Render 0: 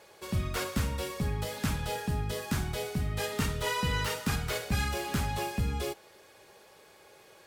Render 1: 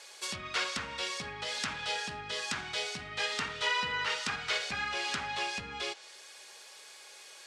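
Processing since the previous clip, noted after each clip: treble ducked by the level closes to 1800 Hz, closed at -25.5 dBFS; weighting filter ITU-R 468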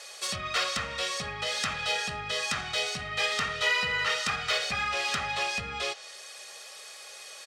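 comb 1.6 ms, depth 57%; in parallel at -6 dB: soft clip -34 dBFS, distortion -9 dB; on the sum: gain +1.5 dB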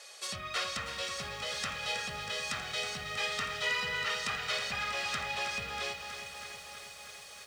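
lo-fi delay 0.32 s, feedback 80%, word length 8-bit, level -9.5 dB; gain -6 dB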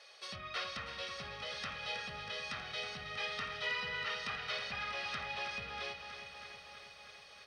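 polynomial smoothing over 15 samples; gain -5 dB

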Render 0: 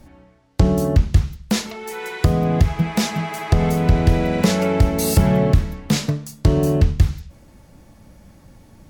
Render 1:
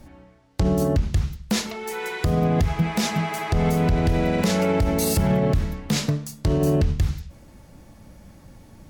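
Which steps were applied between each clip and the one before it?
limiter -12.5 dBFS, peak gain reduction 8.5 dB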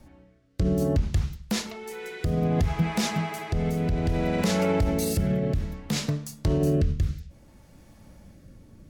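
rotary speaker horn 0.6 Hz; gain -2.5 dB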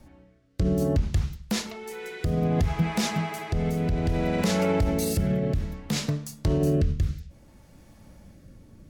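nothing audible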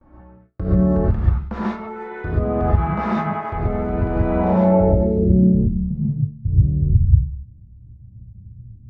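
gate with hold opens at -46 dBFS; low-pass sweep 1200 Hz -> 120 Hz, 4.22–6.16; non-linear reverb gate 0.16 s rising, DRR -7.5 dB; gain -2.5 dB

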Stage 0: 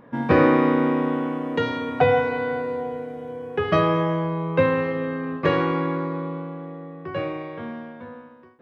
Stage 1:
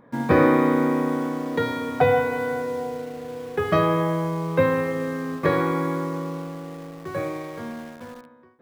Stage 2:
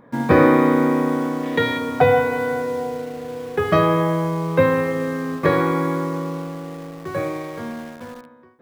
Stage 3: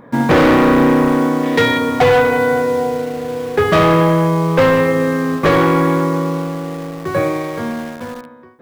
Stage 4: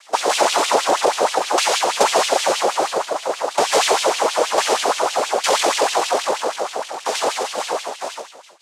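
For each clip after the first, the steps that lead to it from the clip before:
notch 2800 Hz, Q 5.6; in parallel at -7.5 dB: bit-crush 6-bit; on the sum: gain -3.5 dB
spectral gain 1.43–1.78, 1600–4000 Hz +6 dB; gain +3.5 dB
overloaded stage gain 16 dB; gain +8 dB
compressor, threshold -14 dBFS, peak gain reduction 5 dB; noise vocoder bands 2; LFO high-pass sine 6.3 Hz 460–3100 Hz; gain -1.5 dB

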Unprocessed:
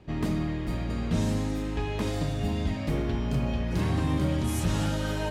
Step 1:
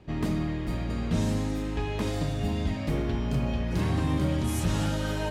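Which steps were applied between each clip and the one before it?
nothing audible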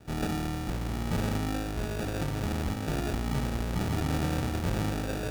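sample-and-hold 42×; one-sided clip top -33.5 dBFS, bottom -19.5 dBFS

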